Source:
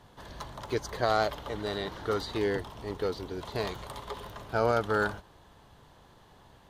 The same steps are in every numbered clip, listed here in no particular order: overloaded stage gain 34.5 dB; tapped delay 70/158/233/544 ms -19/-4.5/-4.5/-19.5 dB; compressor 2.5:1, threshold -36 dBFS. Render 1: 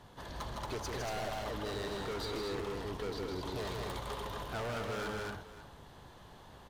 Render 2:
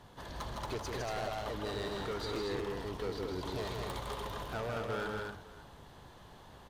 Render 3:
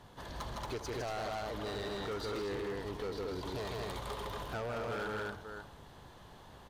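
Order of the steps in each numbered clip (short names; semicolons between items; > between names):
overloaded stage > tapped delay > compressor; compressor > overloaded stage > tapped delay; tapped delay > compressor > overloaded stage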